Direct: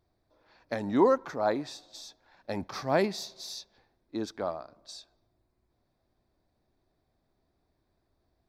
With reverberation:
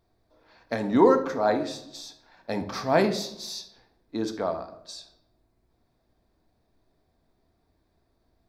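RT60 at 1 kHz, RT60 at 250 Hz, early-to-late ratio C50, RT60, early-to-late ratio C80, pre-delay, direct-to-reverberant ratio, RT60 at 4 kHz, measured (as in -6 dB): 0.65 s, 0.90 s, 11.0 dB, 0.75 s, 14.5 dB, 4 ms, 6.5 dB, 0.50 s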